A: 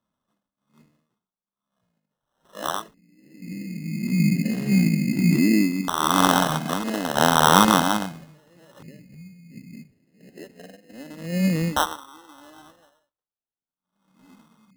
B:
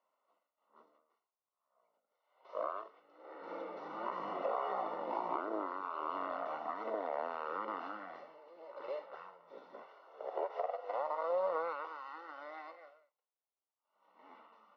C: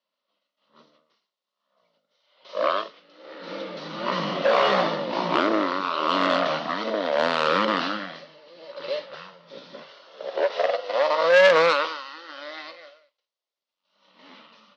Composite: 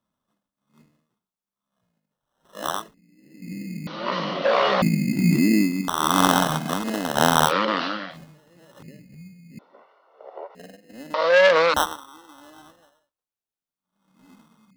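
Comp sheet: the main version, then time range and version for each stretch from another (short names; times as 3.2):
A
3.87–4.82 from C
7.48–8.14 from C, crossfade 0.10 s
9.59–10.55 from B
11.14–11.74 from C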